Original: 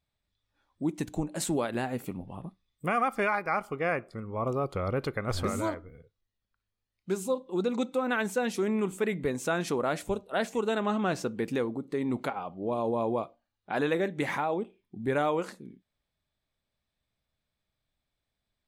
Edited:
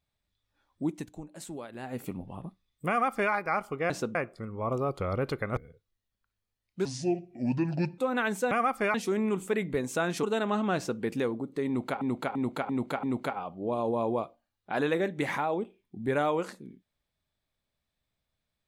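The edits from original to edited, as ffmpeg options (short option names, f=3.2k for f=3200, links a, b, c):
-filter_complex "[0:a]asplit=15[a][b][c][d][e][f][g][h][i][j][k][l][m][n][o];[a]atrim=end=1.11,asetpts=PTS-STARTPTS,afade=t=out:st=0.84:d=0.27:silence=0.266073[p];[b]atrim=start=1.11:end=1.78,asetpts=PTS-STARTPTS,volume=-11.5dB[q];[c]atrim=start=1.78:end=3.902,asetpts=PTS-STARTPTS,afade=t=in:d=0.27:silence=0.266073[r];[d]atrim=start=11.118:end=11.372[s];[e]atrim=start=3.898:end=5.322[t];[f]atrim=start=5.868:end=7.154[u];[g]atrim=start=7.15:end=7.92,asetpts=PTS-STARTPTS,asetrate=29988,aresample=44100[v];[h]atrim=start=7.916:end=8.452[w];[i]atrim=start=2.888:end=3.322[x];[j]atrim=start=8.448:end=9.742[y];[k]atrim=start=10.588:end=12.372[z];[l]atrim=start=12.028:end=12.372[aa];[m]atrim=start=12.028:end=12.372[ab];[n]atrim=start=12.028:end=12.372[ac];[o]atrim=start=12.028[ad];[p][q][r]concat=n=3:v=0:a=1[ae];[ae][s]acrossfade=d=0.004:c1=hsin:c2=hsin[af];[af][t]acrossfade=d=0.004:c1=hsin:c2=hsin[ag];[ag][u]acrossfade=d=0.004:c1=hsin:c2=hsin[ah];[ah][v]acrossfade=d=0.004:c1=hsin:c2=hsin[ai];[ai][w]acrossfade=d=0.004:c1=hsin:c2=hsin[aj];[aj][x]acrossfade=d=0.004:c1=hsin:c2=hsin[ak];[ak][y]acrossfade=d=0.004:c1=hsin:c2=hsin[al];[al][z]acrossfade=d=0.004:c1=hsin:c2=hsin[am];[am][aa]acrossfade=d=0.004:c1=hsin:c2=hsin[an];[an][ab]acrossfade=d=0.004:c1=hsin:c2=hsin[ao];[ao][ac]acrossfade=d=0.004:c1=hsin:c2=hsin[ap];[ap][ad]acrossfade=d=0.004:c1=hsin:c2=hsin"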